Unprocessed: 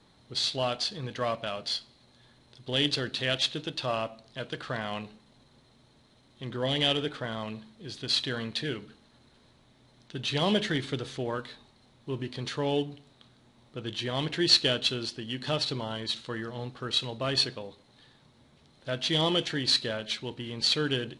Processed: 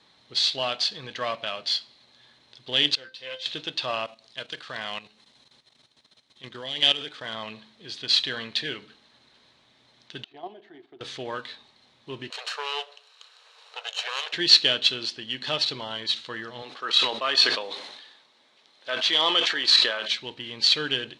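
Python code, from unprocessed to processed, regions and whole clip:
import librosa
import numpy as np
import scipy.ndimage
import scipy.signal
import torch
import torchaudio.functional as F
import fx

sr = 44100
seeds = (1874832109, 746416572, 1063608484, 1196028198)

y = fx.chain(x, sr, fx.comb_fb(f0_hz=520.0, decay_s=0.21, harmonics='all', damping=0.0, mix_pct=90),
    fx.doppler_dist(depth_ms=0.12), at=(2.95, 3.46))
y = fx.chain(y, sr, fx.high_shelf(hz=4400.0, db=9.0),
    fx.level_steps(step_db=12), at=(4.05, 7.34))
y = fx.chain(y, sr, fx.double_bandpass(hz=510.0, octaves=0.94),
    fx.level_steps(step_db=11), at=(10.24, 11.01))
y = fx.chain(y, sr, fx.lower_of_two(delay_ms=0.73),
    fx.brickwall_highpass(low_hz=410.0),
    fx.band_squash(depth_pct=40), at=(12.3, 14.33))
y = fx.chain(y, sr, fx.highpass(hz=350.0, slope=12),
    fx.dynamic_eq(hz=1200.0, q=1.8, threshold_db=-48.0, ratio=4.0, max_db=7),
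    fx.sustainer(db_per_s=50.0), at=(16.62, 20.08))
y = scipy.signal.sosfilt(scipy.signal.butter(2, 4100.0, 'lowpass', fs=sr, output='sos'), y)
y = fx.tilt_eq(y, sr, slope=3.5)
y = fx.notch(y, sr, hz=1400.0, q=23.0)
y = F.gain(torch.from_numpy(y), 2.0).numpy()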